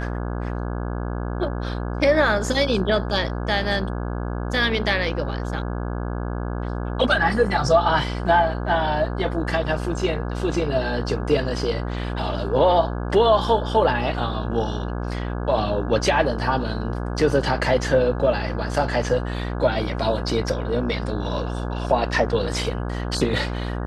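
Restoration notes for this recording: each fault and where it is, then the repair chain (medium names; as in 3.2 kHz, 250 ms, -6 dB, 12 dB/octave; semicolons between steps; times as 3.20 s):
buzz 60 Hz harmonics 28 -27 dBFS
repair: de-hum 60 Hz, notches 28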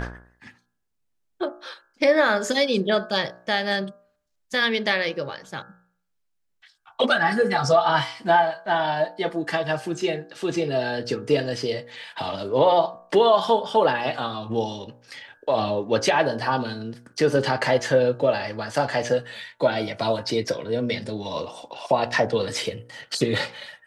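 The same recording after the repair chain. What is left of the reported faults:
nothing left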